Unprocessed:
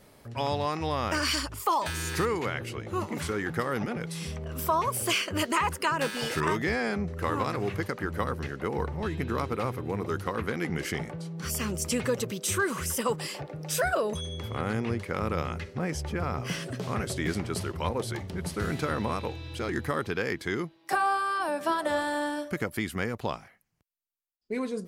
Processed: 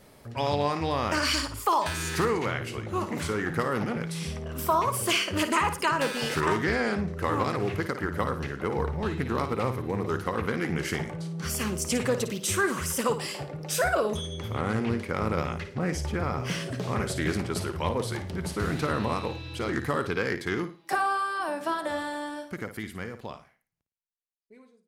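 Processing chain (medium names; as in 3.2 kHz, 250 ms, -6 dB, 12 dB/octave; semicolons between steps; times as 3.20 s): fade out at the end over 4.69 s; flutter echo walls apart 9.5 m, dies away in 0.33 s; loudspeaker Doppler distortion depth 0.17 ms; trim +1.5 dB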